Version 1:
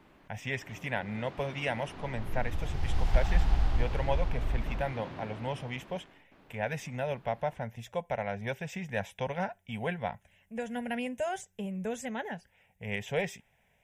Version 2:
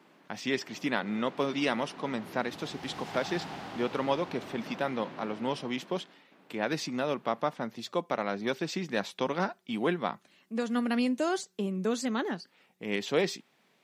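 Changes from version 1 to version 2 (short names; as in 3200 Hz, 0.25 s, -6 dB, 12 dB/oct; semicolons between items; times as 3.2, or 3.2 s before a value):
speech: remove fixed phaser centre 1200 Hz, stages 6; master: add HPF 170 Hz 24 dB/oct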